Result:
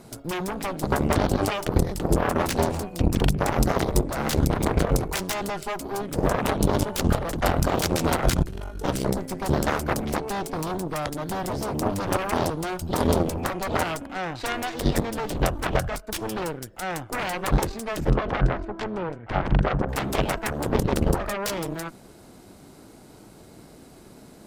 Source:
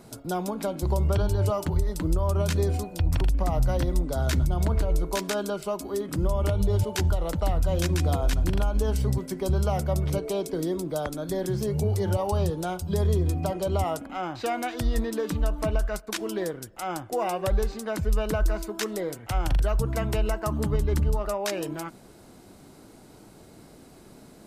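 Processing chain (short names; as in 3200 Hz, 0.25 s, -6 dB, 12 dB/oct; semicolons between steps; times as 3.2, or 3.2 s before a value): 8.43–8.84 resonator 130 Hz, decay 1.1 s, harmonics all, mix 80%; 18.1–19.89 LPF 1800 Hz 12 dB/oct; added harmonics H 3 -7 dB, 7 -31 dB, 8 -22 dB, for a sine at -14 dBFS; gain +7.5 dB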